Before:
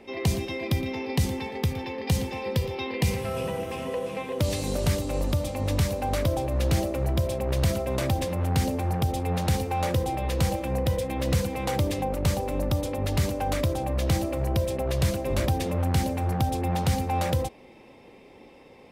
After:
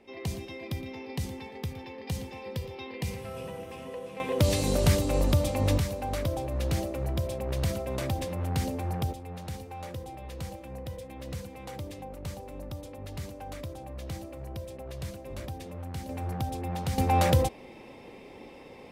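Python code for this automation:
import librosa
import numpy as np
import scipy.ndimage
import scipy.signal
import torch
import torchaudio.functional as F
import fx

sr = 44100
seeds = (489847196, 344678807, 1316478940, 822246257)

y = fx.gain(x, sr, db=fx.steps((0.0, -9.0), (4.2, 2.0), (5.78, -5.0), (9.13, -13.5), (16.09, -7.0), (16.98, 3.0)))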